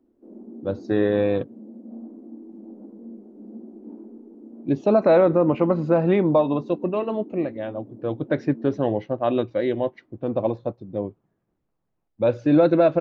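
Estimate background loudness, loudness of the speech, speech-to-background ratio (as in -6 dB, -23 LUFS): -42.0 LUFS, -22.5 LUFS, 19.5 dB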